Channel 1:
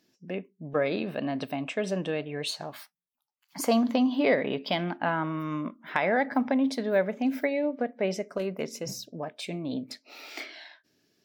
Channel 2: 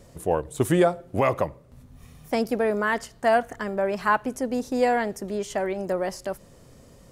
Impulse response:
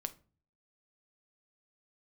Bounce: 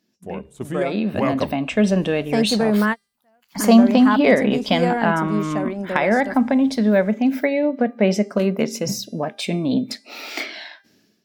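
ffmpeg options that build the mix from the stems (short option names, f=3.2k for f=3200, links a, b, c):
-filter_complex "[0:a]bandreject=f=399.2:t=h:w=4,bandreject=f=798.4:t=h:w=4,bandreject=f=1.1976k:t=h:w=4,bandreject=f=1.5968k:t=h:w=4,bandreject=f=1.996k:t=h:w=4,bandreject=f=2.3952k:t=h:w=4,bandreject=f=2.7944k:t=h:w=4,bandreject=f=3.1936k:t=h:w=4,bandreject=f=3.5928k:t=h:w=4,bandreject=f=3.992k:t=h:w=4,bandreject=f=4.3912k:t=h:w=4,bandreject=f=4.7904k:t=h:w=4,bandreject=f=5.1896k:t=h:w=4,bandreject=f=5.5888k:t=h:w=4,bandreject=f=5.988k:t=h:w=4,bandreject=f=6.3872k:t=h:w=4,bandreject=f=6.7864k:t=h:w=4,bandreject=f=7.1856k:t=h:w=4,bandreject=f=7.5848k:t=h:w=4,bandreject=f=7.984k:t=h:w=4,bandreject=f=8.3832k:t=h:w=4,bandreject=f=8.7824k:t=h:w=4,bandreject=f=9.1816k:t=h:w=4,bandreject=f=9.5808k:t=h:w=4,bandreject=f=9.98k:t=h:w=4,bandreject=f=10.3792k:t=h:w=4,bandreject=f=10.7784k:t=h:w=4,bandreject=f=11.1776k:t=h:w=4,bandreject=f=11.5768k:t=h:w=4,volume=-2.5dB,asplit=2[a][b];[1:a]highshelf=f=12k:g=-7.5,volume=-10.5dB[c];[b]apad=whole_len=313748[d];[c][d]sidechaingate=range=-43dB:threshold=-58dB:ratio=16:detection=peak[e];[a][e]amix=inputs=2:normalize=0,equalizer=f=210:t=o:w=0.24:g=12,dynaudnorm=f=730:g=3:m=14dB"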